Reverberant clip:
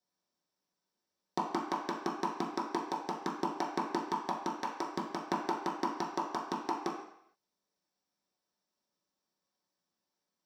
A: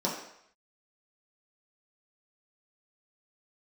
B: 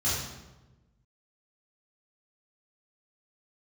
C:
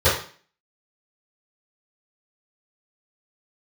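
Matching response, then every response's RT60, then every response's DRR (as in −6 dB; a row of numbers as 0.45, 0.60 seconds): A; 0.70, 1.1, 0.40 seconds; −5.5, −11.0, −16.0 decibels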